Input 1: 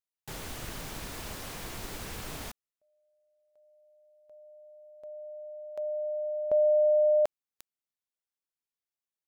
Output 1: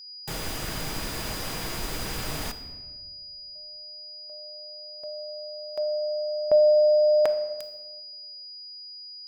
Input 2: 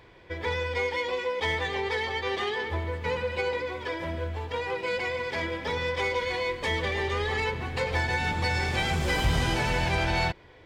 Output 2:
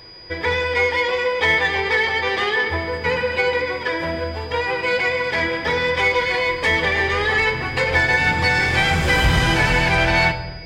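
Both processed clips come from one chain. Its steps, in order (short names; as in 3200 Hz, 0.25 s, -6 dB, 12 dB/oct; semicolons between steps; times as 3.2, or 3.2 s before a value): dynamic EQ 1800 Hz, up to +6 dB, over -45 dBFS, Q 1.2; whine 4900 Hz -49 dBFS; shoebox room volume 990 m³, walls mixed, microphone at 0.59 m; gain +6.5 dB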